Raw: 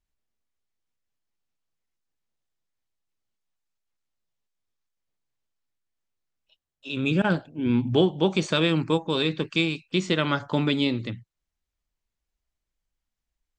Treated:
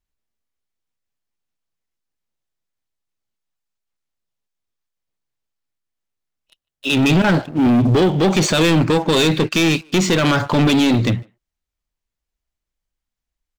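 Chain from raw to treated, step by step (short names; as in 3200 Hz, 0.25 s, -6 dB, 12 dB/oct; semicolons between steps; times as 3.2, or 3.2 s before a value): limiter -16 dBFS, peak gain reduction 8 dB; sample leveller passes 3; speakerphone echo 0.15 s, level -26 dB; gain +6.5 dB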